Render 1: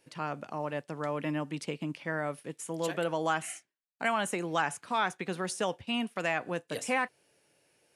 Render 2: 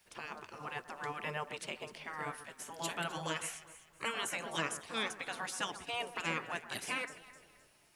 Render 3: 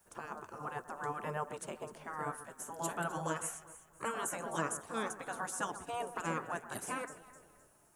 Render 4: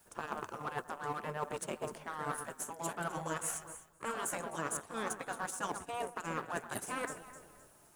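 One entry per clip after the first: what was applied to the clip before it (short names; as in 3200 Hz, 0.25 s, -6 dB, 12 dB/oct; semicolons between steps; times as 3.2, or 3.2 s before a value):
added noise pink -73 dBFS; echo with dull and thin repeats by turns 0.129 s, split 1600 Hz, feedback 60%, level -12.5 dB; spectral gate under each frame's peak -10 dB weak; gain +1 dB
band shelf 3200 Hz -14 dB; gain +2.5 dB
G.711 law mismatch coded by A; reverse; compressor 6:1, threshold -48 dBFS, peak gain reduction 16 dB; reverse; gain +13 dB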